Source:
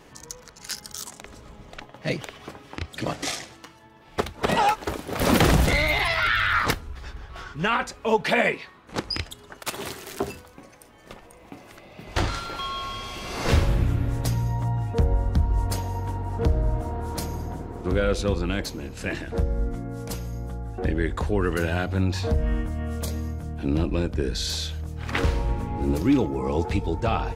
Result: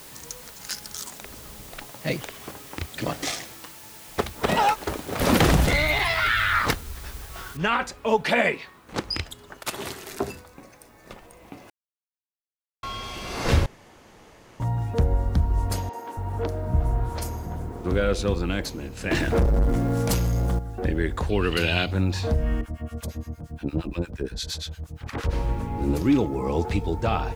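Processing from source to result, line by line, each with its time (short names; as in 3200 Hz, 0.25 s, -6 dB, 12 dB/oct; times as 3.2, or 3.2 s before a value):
7.57 noise floor step -45 dB -65 dB
10.08–11.12 notch 3100 Hz, Q 9.4
11.7–12.83 mute
13.66–14.6 room tone
15.89–17.7 three bands offset in time mids, highs, lows 40/280 ms, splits 270/5000 Hz
19.11–20.59 sample leveller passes 3
21.29–21.91 band shelf 3300 Hz +13 dB 1.3 oct
22.61–25.33 harmonic tremolo 8.6 Hz, depth 100%, crossover 1000 Hz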